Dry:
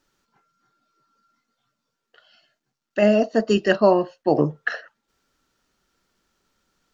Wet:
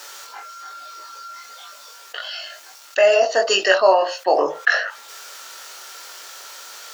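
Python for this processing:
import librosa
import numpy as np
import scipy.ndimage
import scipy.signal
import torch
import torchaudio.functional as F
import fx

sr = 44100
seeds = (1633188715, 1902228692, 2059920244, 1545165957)

y = scipy.signal.sosfilt(scipy.signal.butter(4, 540.0, 'highpass', fs=sr, output='sos'), x)
y = fx.high_shelf(y, sr, hz=4000.0, db=7.0)
y = fx.doubler(y, sr, ms=21.0, db=-3)
y = fx.env_flatten(y, sr, amount_pct=50)
y = y * 10.0 ** (1.5 / 20.0)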